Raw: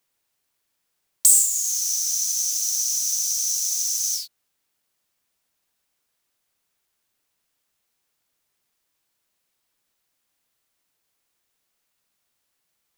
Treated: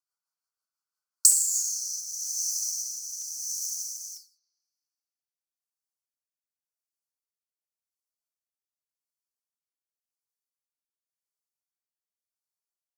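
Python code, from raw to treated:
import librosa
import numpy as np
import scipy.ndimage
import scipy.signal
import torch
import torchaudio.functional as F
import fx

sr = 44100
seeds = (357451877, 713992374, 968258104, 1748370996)

y = fx.peak_eq(x, sr, hz=1900.0, db=fx.steps((0.0, 6.0), (2.0, -6.0), (3.29, -13.5)), octaves=2.2)
y = scipy.signal.sosfilt(scipy.signal.butter(2, 1000.0, 'highpass', fs=sr, output='sos'), y)
y = fx.rotary_switch(y, sr, hz=6.0, then_hz=0.9, switch_at_s=0.77)
y = scipy.signal.sosfilt(scipy.signal.cheby1(5, 1.0, [1500.0, 4300.0], 'bandstop', fs=sr, output='sos'), y)
y = fx.high_shelf(y, sr, hz=9200.0, db=-6.0)
y = y + 10.0 ** (-15.5 / 20.0) * np.pad(y, (int(117 * sr / 1000.0), 0))[:len(y)]
y = fx.rev_spring(y, sr, rt60_s=1.9, pass_ms=(39, 43, 53), chirp_ms=80, drr_db=4.5)
y = fx.buffer_crackle(y, sr, first_s=0.36, period_s=0.95, block=256, kind='repeat')
y = fx.upward_expand(y, sr, threshold_db=-47.0, expansion=1.5)
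y = y * 10.0 ** (4.0 / 20.0)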